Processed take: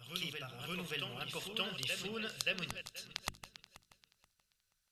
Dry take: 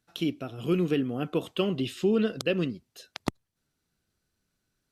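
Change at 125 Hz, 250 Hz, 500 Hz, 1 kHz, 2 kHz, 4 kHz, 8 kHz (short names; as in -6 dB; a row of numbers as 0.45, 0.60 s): -15.0, -21.0, -17.5, -7.0, -1.0, 0.0, +2.0 dB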